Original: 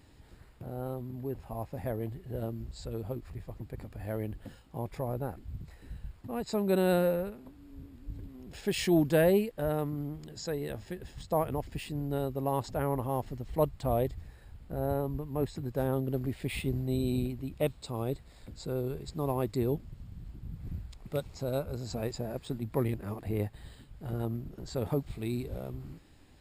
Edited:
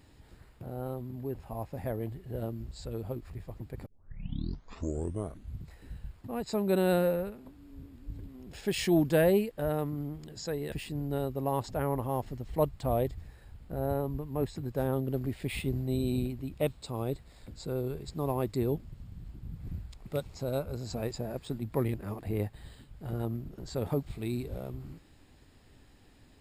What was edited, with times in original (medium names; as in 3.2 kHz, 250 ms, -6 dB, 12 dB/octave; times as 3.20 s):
3.86 s: tape start 1.73 s
10.72–11.72 s: delete